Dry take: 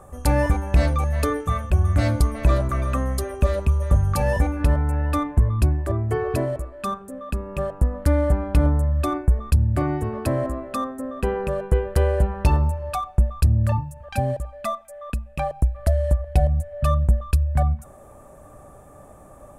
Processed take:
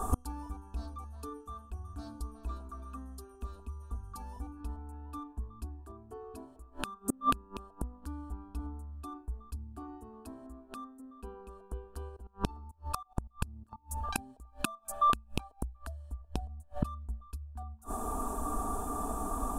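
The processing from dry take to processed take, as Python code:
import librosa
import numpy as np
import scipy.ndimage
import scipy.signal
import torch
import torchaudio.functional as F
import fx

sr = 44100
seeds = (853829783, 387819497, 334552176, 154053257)

y = x + 0.57 * np.pad(x, (int(4.3 * sr / 1000.0), 0))[:len(x)]
y = fx.level_steps(y, sr, step_db=23, at=(12.09, 14.16))
y = fx.fixed_phaser(y, sr, hz=550.0, stages=6)
y = fx.gate_flip(y, sr, shuts_db=-28.0, range_db=-33)
y = F.gain(torch.from_numpy(y), 13.0).numpy()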